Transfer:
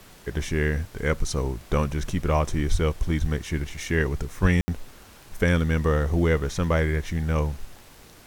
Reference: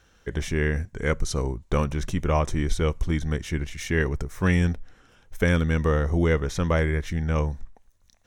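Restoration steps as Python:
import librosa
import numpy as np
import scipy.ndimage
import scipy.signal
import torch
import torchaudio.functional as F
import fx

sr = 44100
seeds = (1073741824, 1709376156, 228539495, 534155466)

y = fx.fix_declick_ar(x, sr, threshold=6.5)
y = fx.fix_deplosive(y, sr, at_s=(2.71, 3.2, 4.41))
y = fx.fix_ambience(y, sr, seeds[0], print_start_s=7.75, print_end_s=8.25, start_s=4.61, end_s=4.68)
y = fx.noise_reduce(y, sr, print_start_s=7.75, print_end_s=8.25, reduce_db=9.0)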